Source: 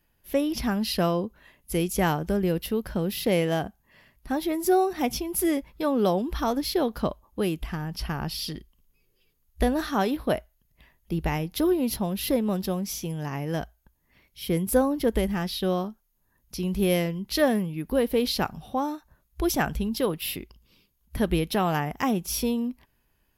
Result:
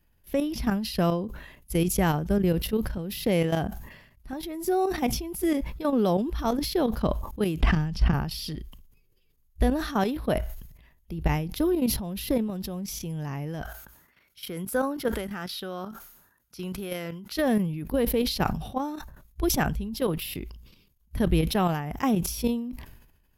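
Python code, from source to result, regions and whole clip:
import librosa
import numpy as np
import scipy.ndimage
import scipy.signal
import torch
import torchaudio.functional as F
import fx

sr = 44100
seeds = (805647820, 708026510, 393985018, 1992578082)

y = fx.chain(x, sr, fx.lowpass(hz=6500.0, slope=12),
    fx.low_shelf(hz=420.0, db=5.0),
    fx.band_squash(depth_pct=100), at=(7.6, 8.14))
y = fx.chain(y, sr, fx.highpass(hz=450.0, slope=6),
    fx.peak_eq(hz=1400.0, db=10.5, octaves=0.34), at=(13.62, 17.37))
y = fx.level_steps(y, sr, step_db=12)
y = fx.low_shelf(y, sr, hz=160.0, db=8.5)
y = fx.sustainer(y, sr, db_per_s=64.0)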